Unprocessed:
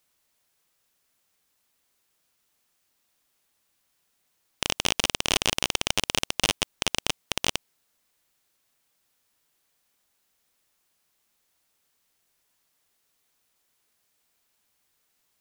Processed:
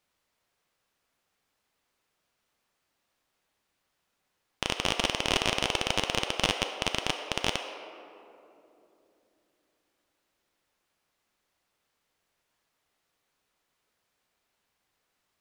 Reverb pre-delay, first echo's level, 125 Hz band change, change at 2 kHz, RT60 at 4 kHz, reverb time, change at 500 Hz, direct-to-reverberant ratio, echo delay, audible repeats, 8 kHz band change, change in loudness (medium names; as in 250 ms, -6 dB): 4 ms, no echo, 0.0 dB, -1.5 dB, 1.3 s, 2.9 s, +1.5 dB, 4.5 dB, no echo, no echo, -7.5 dB, -2.5 dB